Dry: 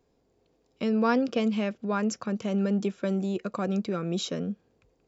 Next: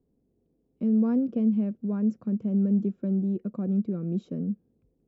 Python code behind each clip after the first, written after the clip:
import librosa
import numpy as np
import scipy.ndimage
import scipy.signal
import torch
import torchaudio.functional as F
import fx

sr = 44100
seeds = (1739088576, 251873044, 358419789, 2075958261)

y = fx.curve_eq(x, sr, hz=(110.0, 220.0, 930.0, 5100.0), db=(0, 5, -16, -29))
y = F.gain(torch.from_numpy(y), -1.0).numpy()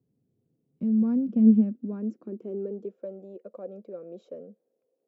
y = fx.filter_sweep_highpass(x, sr, from_hz=120.0, to_hz=540.0, start_s=0.46, end_s=3.09, q=4.8)
y = fx.doppler_dist(y, sr, depth_ms=0.15)
y = F.gain(torch.from_numpy(y), -6.5).numpy()